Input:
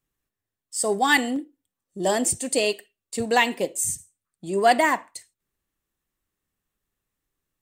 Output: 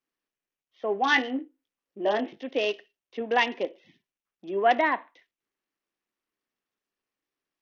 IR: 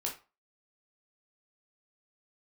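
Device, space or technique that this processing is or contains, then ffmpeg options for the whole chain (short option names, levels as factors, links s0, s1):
Bluetooth headset: -filter_complex "[0:a]asettb=1/sr,asplit=3[s0][s1][s2];[s0]atrim=end=1.034[s3];[s1]atrim=start=1.03:end=2.44,asetpts=PTS-STARTPTS,afade=t=in:d=0.004:c=qsin,afade=t=out:st=1.406:d=0.004:c=qsin,asplit=2[s4][s5];[s5]adelay=19,volume=0.501[s6];[s4][s6]amix=inputs=2:normalize=0,atrim=end_sample=62181[s7];[s2]atrim=start=2.436[s8];[s3][s7]acrossfade=d=0.004:c1=hsin:c2=qsin[s9];[s9][s8]acrossfade=d=0.004:c1=qsin:c2=hsin,highpass=f=240:w=0.5412,highpass=f=240:w=1.3066,aresample=8000,aresample=44100,volume=0.668" -ar 48000 -c:a sbc -b:a 64k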